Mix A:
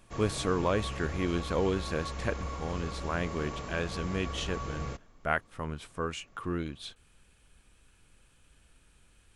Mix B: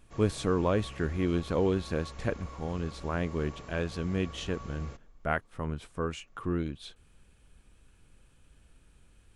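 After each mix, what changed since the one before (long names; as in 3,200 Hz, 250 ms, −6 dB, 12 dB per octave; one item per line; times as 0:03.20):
speech: add tilt shelving filter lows +3.5 dB, about 710 Hz
background −7.5 dB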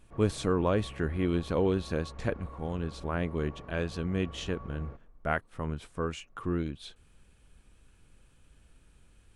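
background: add low-pass filter 1,300 Hz 12 dB per octave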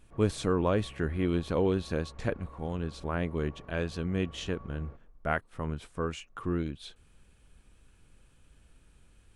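background −4.0 dB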